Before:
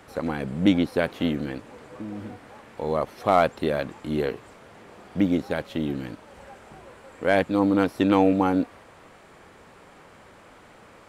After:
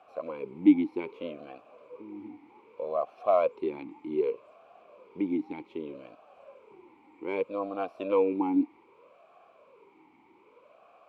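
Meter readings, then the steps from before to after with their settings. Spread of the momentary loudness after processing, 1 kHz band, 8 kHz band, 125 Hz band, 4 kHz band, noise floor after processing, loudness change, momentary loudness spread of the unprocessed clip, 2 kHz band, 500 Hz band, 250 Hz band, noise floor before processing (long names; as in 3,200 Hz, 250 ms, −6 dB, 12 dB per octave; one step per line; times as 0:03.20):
19 LU, −8.5 dB, can't be measured, −19.0 dB, below −15 dB, −61 dBFS, −5.5 dB, 17 LU, −14.5 dB, −4.5 dB, −5.5 dB, −51 dBFS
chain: formant filter swept between two vowels a-u 0.64 Hz
level +2.5 dB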